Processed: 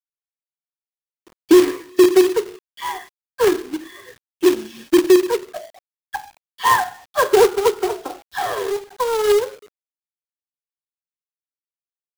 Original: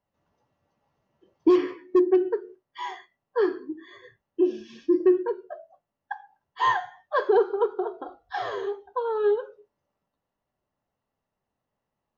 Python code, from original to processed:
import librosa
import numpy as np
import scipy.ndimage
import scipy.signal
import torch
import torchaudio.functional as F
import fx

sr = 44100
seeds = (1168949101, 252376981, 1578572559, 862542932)

y = fx.dispersion(x, sr, late='lows', ms=42.0, hz=2500.0)
y = fx.quant_companded(y, sr, bits=4)
y = y * 10.0 ** (7.0 / 20.0)